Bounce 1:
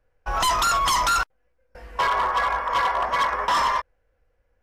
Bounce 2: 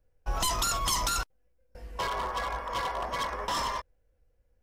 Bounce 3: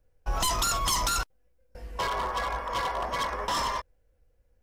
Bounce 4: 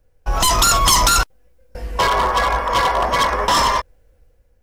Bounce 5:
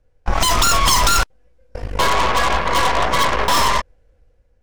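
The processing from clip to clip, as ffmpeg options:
-af "equalizer=f=1.4k:t=o:w=2.6:g=-12"
-af "asoftclip=type=tanh:threshold=-19dB,volume=2.5dB"
-af "dynaudnorm=f=100:g=9:m=5dB,volume=8dB"
-af "adynamicsmooth=sensitivity=1:basefreq=7.9k,aeval=exprs='0.501*(cos(1*acos(clip(val(0)/0.501,-1,1)))-cos(1*PI/2))+0.1*(cos(8*acos(clip(val(0)/0.501,-1,1)))-cos(8*PI/2))':c=same,volume=-1dB"

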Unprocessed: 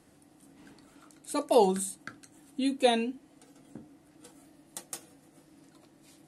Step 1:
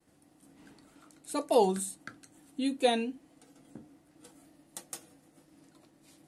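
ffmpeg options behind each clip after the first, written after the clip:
-af "agate=range=-33dB:threshold=-57dB:ratio=3:detection=peak,volume=-2dB"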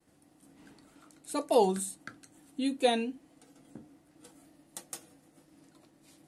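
-af anull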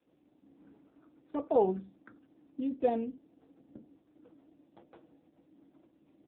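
-af "bandpass=f=370:t=q:w=0.59:csg=0,aecho=1:1:84:0.0708" -ar 8000 -c:a libopencore_amrnb -b:a 5900

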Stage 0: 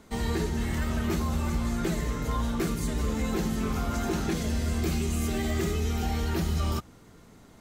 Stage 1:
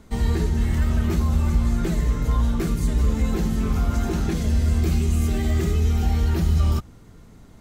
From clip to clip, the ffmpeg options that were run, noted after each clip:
-af "lowshelf=f=150:g=12"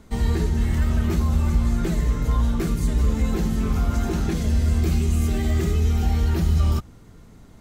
-af anull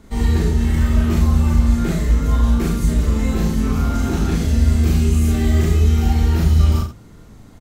-af "aecho=1:1:37.9|72.89|122.4:1|0.562|0.282,volume=1dB"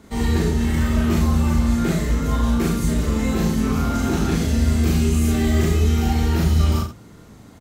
-af "highpass=f=120:p=1,volume=1.5dB"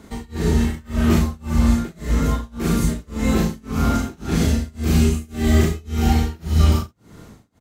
-af "tremolo=f=1.8:d=0.98,volume=3.5dB"

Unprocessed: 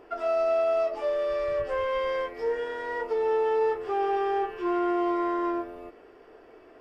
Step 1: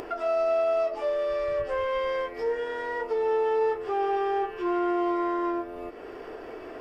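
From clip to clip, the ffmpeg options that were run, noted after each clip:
-af "acompressor=mode=upward:threshold=-28dB:ratio=2.5"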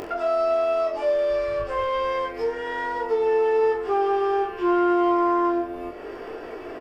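-af "aecho=1:1:20|42|66.2|92.82|122.1:0.631|0.398|0.251|0.158|0.1,volume=2.5dB"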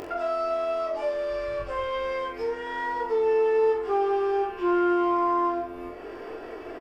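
-filter_complex "[0:a]asplit=2[a][b];[b]adelay=45,volume=-7.5dB[c];[a][c]amix=inputs=2:normalize=0,volume=-3.5dB"

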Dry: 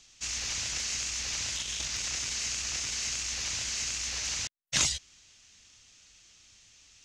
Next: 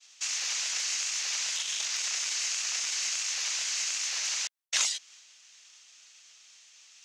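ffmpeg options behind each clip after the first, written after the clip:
-af "agate=range=-33dB:threshold=-54dB:ratio=3:detection=peak,highpass=760,acompressor=threshold=-41dB:ratio=1.5,volume=6dB"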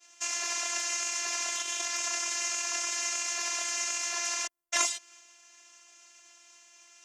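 -af "equalizer=f=125:t=o:w=1:g=11,equalizer=f=250:t=o:w=1:g=5,equalizer=f=500:t=o:w=1:g=10,equalizer=f=1k:t=o:w=1:g=5,equalizer=f=4k:t=o:w=1:g=-9,afftfilt=real='hypot(re,im)*cos(PI*b)':imag='0':win_size=512:overlap=0.75,volume=6dB"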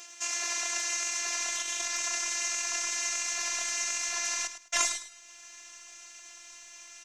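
-af "acompressor=mode=upward:threshold=-37dB:ratio=2.5,asubboost=boost=6.5:cutoff=120,aecho=1:1:105|210|315:0.282|0.0676|0.0162"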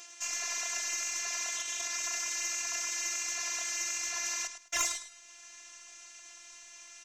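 -af "aeval=exprs='0.501*(cos(1*acos(clip(val(0)/0.501,-1,1)))-cos(1*PI/2))+0.126*(cos(4*acos(clip(val(0)/0.501,-1,1)))-cos(4*PI/2))+0.0794*(cos(6*acos(clip(val(0)/0.501,-1,1)))-cos(6*PI/2))+0.0316*(cos(8*acos(clip(val(0)/0.501,-1,1)))-cos(8*PI/2))':c=same,volume=-2dB"

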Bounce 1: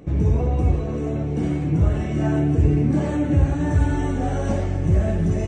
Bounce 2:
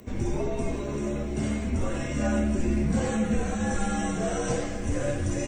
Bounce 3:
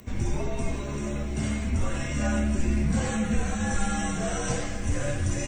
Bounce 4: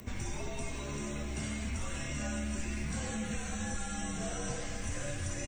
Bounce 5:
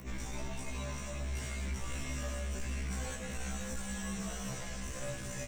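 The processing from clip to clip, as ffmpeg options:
-af "aemphasis=mode=production:type=bsi,afreqshift=-79"
-af "equalizer=f=400:w=0.72:g=-8,volume=3dB"
-filter_complex "[0:a]acrossover=split=740|2400[a][b][c];[a]acompressor=threshold=-37dB:ratio=4[d];[b]acompressor=threshold=-49dB:ratio=4[e];[c]acompressor=threshold=-43dB:ratio=4[f];[d][e][f]amix=inputs=3:normalize=0,asplit=2[g][h];[h]adelay=209.9,volume=-12dB,highshelf=f=4k:g=-4.72[i];[g][i]amix=inputs=2:normalize=0"
-af "asoftclip=type=hard:threshold=-36dB,afftfilt=real='re*1.73*eq(mod(b,3),0)':imag='im*1.73*eq(mod(b,3),0)':win_size=2048:overlap=0.75,volume=2.5dB"

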